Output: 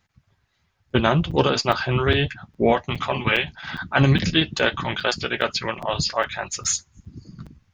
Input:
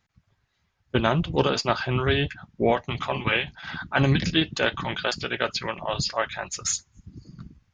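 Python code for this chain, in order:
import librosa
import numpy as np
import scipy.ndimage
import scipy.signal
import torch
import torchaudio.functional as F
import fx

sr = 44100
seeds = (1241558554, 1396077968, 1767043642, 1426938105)

y = fx.chorus_voices(x, sr, voices=2, hz=1.3, base_ms=11, depth_ms=3.0, mix_pct=20)
y = fx.buffer_crackle(y, sr, first_s=0.9, period_s=0.41, block=256, kind='zero')
y = F.gain(torch.from_numpy(y), 5.0).numpy()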